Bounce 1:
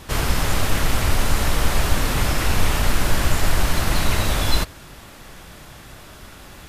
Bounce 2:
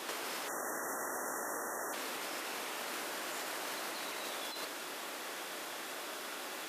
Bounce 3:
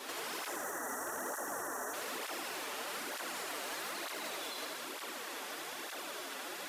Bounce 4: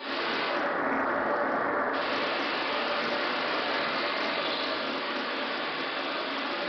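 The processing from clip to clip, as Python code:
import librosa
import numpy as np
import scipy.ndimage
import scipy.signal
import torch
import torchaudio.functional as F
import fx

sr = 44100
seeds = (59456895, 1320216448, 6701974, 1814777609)

y1 = fx.spec_erase(x, sr, start_s=0.48, length_s=1.45, low_hz=2000.0, high_hz=5500.0)
y1 = scipy.signal.sosfilt(scipy.signal.butter(4, 310.0, 'highpass', fs=sr, output='sos'), y1)
y1 = fx.over_compress(y1, sr, threshold_db=-34.0, ratio=-1.0)
y1 = y1 * 10.0 ** (-6.0 / 20.0)
y2 = fx.echo_feedback(y1, sr, ms=81, feedback_pct=51, wet_db=-4)
y2 = np.clip(y2, -10.0 ** (-32.0 / 20.0), 10.0 ** (-32.0 / 20.0))
y2 = fx.flanger_cancel(y2, sr, hz=1.1, depth_ms=6.5)
y2 = y2 * 10.0 ** (1.0 / 20.0)
y3 = fx.brickwall_lowpass(y2, sr, high_hz=5000.0)
y3 = fx.room_shoebox(y3, sr, seeds[0], volume_m3=320.0, walls='mixed', distance_m=2.5)
y3 = fx.doppler_dist(y3, sr, depth_ms=0.23)
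y3 = y3 * 10.0 ** (5.0 / 20.0)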